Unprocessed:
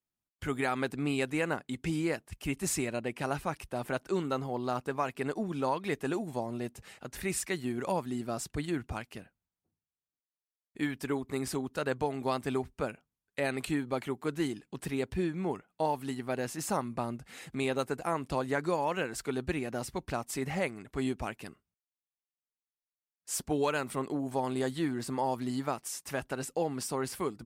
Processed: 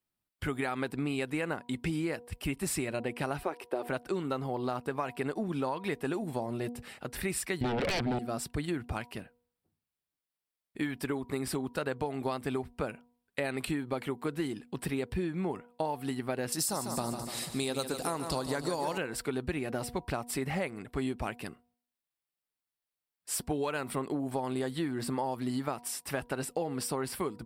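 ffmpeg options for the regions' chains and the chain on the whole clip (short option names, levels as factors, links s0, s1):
-filter_complex "[0:a]asettb=1/sr,asplit=3[s0][s1][s2];[s0]atrim=end=3.434[s3];[s1]atrim=start=3.43:end=3.87,asetpts=PTS-STARTPTS,afade=t=in:d=0.004:c=qsin,afade=t=out:st=0.436:d=0.004:c=qsin,highpass=f=380:t=q:w=3,equalizer=f=9500:t=o:w=1.8:g=-5.5[s4];[s2]atrim=start=3.866[s5];[s3][s4]acrossfade=d=0.004:c1=hsin:c2=qsin[s6];[s6][s5]acrossfade=d=0.004:c1=qsin:c2=hsin,asettb=1/sr,asplit=3[s7][s8][s9];[s7]atrim=end=7.614[s10];[s8]atrim=start=7.61:end=8.19,asetpts=PTS-STARTPTS,afade=t=in:d=0.004:c=qsin,afade=t=out:st=0.576:d=0.004:c=qsin,adynamicsmooth=sensitivity=4:basefreq=1600,aeval=exprs='0.0944*sin(PI/2*6.31*val(0)/0.0944)':c=same,equalizer=f=1100:w=2.5:g=-10.5[s11];[s9]atrim=start=8.186[s12];[s10][s11]acrossfade=d=0.004:c1=hsin:c2=qsin[s13];[s13][s12]acrossfade=d=0.004:c1=qsin:c2=hsin,asettb=1/sr,asplit=3[s14][s15][s16];[s14]atrim=end=16.524[s17];[s15]atrim=start=16.52:end=18.98,asetpts=PTS-STARTPTS,afade=t=in:d=0.004:c=qsin,afade=t=out:st=2.456:d=0.004:c=qsin,highshelf=f=3400:t=q:w=1.5:g=11,aecho=1:1:147|294|441|588|735|882:0.316|0.177|0.0992|0.0555|0.0311|0.0174,atrim=end_sample=108486[s18];[s16]atrim=start=18.976[s19];[s17][s18]acrossfade=d=0.004:c1=hsin:c2=qsin[s20];[s20][s19]acrossfade=d=0.004:c1=qsin:c2=hsin,equalizer=f=6500:t=o:w=0.27:g=-10.5,bandreject=f=241.3:t=h:w=4,bandreject=f=482.6:t=h:w=4,bandreject=f=723.9:t=h:w=4,bandreject=f=965.2:t=h:w=4,acompressor=threshold=0.0224:ratio=6,volume=1.58"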